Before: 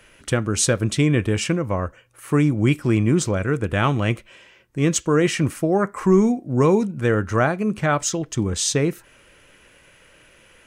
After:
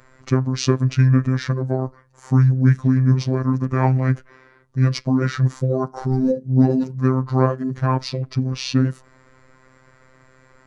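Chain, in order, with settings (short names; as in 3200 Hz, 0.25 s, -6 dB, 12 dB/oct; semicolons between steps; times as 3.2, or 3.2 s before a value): high shelf 2200 Hz -10.5 dB; formant shift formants -6 st; robotiser 130 Hz; gain +5 dB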